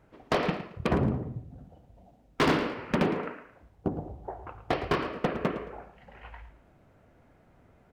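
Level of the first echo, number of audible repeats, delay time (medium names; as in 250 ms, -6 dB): -13.5 dB, 2, 111 ms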